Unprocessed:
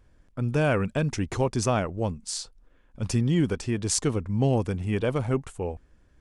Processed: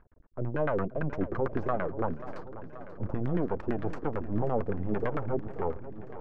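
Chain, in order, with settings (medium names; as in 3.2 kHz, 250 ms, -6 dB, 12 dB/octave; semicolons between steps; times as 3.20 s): peak limiter -18.5 dBFS, peak gain reduction 11 dB; half-wave rectifier; LFO low-pass saw down 8.9 Hz 290–1700 Hz; modulated delay 534 ms, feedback 73%, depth 94 cents, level -14.5 dB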